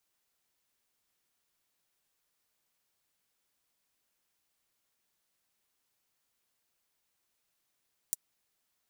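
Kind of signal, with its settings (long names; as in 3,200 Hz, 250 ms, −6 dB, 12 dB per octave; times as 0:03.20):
closed synth hi-hat, high-pass 7,500 Hz, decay 0.03 s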